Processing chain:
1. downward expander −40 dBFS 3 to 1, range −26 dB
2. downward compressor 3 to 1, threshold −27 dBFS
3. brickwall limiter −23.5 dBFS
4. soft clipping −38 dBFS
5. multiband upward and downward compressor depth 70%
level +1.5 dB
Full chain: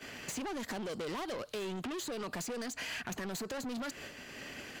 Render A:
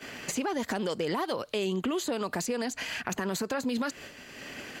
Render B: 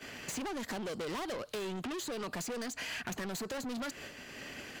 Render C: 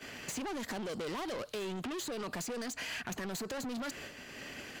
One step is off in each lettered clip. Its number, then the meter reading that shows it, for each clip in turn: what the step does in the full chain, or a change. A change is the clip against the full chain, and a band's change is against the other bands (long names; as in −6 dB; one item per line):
4, distortion level −7 dB
3, average gain reduction 1.5 dB
2, average gain reduction 4.5 dB